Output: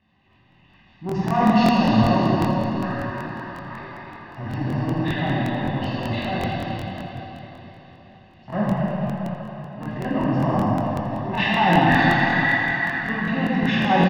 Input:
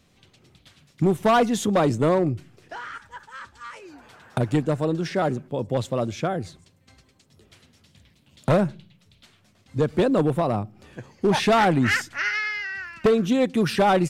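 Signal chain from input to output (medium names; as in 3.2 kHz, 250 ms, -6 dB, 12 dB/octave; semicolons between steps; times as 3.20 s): knee-point frequency compression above 1.7 kHz 1.5:1; low-pass 2.7 kHz 12 dB/octave; bass shelf 130 Hz -9.5 dB; comb 1.1 ms, depth 90%; transient shaper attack -12 dB, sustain +11 dB; echo whose repeats swap between lows and highs 105 ms, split 820 Hz, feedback 68%, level -9 dB; plate-style reverb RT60 4.2 s, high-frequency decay 0.85×, DRR -7.5 dB; crackling interface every 0.19 s, samples 1024, repeat, from 0.31 s; modulated delay 83 ms, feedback 35%, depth 98 cents, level -17.5 dB; trim -7 dB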